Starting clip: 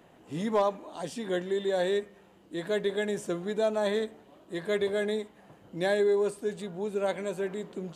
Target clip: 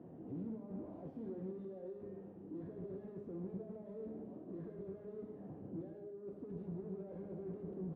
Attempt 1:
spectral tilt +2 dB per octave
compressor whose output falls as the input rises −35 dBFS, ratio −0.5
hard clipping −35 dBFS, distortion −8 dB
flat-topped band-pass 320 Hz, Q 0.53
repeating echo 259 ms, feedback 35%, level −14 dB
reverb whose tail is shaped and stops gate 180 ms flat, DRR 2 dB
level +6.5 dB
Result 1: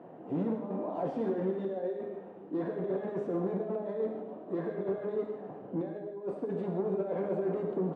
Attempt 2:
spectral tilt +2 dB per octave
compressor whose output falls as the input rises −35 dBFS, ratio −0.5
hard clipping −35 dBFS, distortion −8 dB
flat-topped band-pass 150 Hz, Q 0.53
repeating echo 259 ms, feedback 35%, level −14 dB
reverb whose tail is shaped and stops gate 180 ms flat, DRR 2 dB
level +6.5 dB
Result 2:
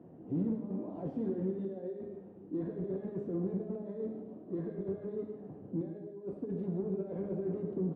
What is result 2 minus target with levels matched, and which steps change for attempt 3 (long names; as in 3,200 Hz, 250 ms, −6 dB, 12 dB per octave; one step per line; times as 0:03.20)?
hard clipping: distortion −6 dB
change: hard clipping −47 dBFS, distortion −2 dB